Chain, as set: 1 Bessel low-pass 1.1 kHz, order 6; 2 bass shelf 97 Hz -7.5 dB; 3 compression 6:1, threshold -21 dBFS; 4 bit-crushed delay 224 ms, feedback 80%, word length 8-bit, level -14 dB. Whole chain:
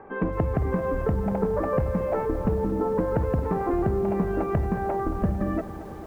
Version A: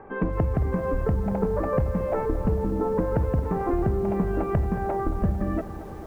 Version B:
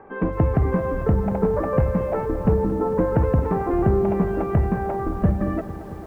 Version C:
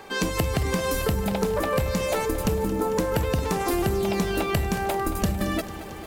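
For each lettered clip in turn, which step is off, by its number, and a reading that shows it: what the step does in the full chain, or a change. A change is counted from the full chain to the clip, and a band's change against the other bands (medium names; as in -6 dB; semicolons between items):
2, 125 Hz band +2.5 dB; 3, mean gain reduction 3.0 dB; 1, 2 kHz band +8.0 dB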